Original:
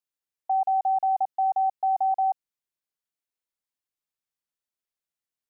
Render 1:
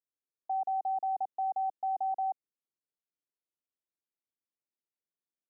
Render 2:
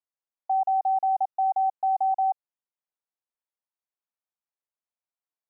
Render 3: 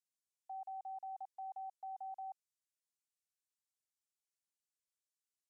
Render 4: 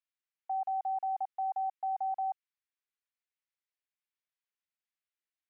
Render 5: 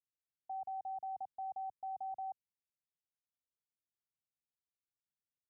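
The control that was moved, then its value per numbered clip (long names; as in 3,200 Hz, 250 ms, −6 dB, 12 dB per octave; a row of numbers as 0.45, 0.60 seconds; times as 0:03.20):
resonant band-pass, frequency: 320, 830, 7,500, 2,100, 110 Hertz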